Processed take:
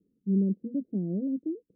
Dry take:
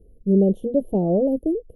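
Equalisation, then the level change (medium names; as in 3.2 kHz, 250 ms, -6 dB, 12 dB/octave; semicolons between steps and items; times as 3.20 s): Butterworth band-pass 230 Hz, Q 1.5; -6.5 dB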